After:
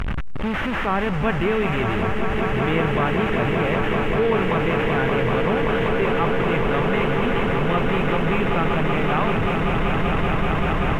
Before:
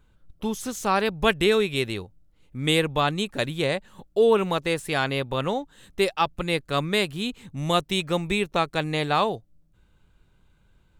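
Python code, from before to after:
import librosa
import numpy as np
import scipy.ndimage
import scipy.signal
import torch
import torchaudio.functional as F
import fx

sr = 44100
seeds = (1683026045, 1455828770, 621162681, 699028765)

y = fx.delta_mod(x, sr, bps=16000, step_db=-21.5)
y = fx.lowpass(y, sr, hz=2500.0, slope=6)
y = fx.peak_eq(y, sr, hz=520.0, db=-4.5, octaves=2.2)
y = fx.echo_swell(y, sr, ms=192, loudest=8, wet_db=-8.5)
y = fx.backlash(y, sr, play_db=-44.5)
y = fx.env_flatten(y, sr, amount_pct=50)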